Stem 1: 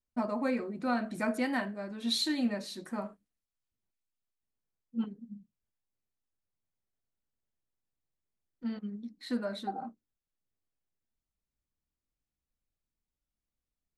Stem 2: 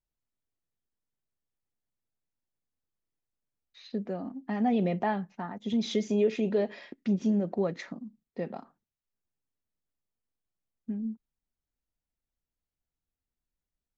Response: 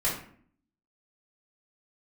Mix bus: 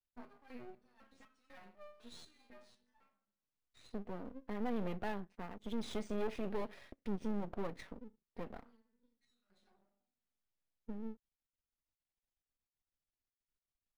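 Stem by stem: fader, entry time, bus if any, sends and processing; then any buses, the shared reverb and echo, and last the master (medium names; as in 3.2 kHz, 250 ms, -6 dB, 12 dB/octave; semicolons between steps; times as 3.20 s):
-2.5 dB, 0.00 s, send -20 dB, bass shelf 180 Hz -9.5 dB; peak limiter -28 dBFS, peak gain reduction 9 dB; resonator arpeggio 4 Hz 83–1300 Hz; auto duck -18 dB, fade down 1.85 s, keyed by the second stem
-5.5 dB, 0.00 s, no send, saturation -21.5 dBFS, distortion -17 dB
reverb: on, RT60 0.55 s, pre-delay 3 ms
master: half-wave rectifier; decimation joined by straight lines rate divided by 3×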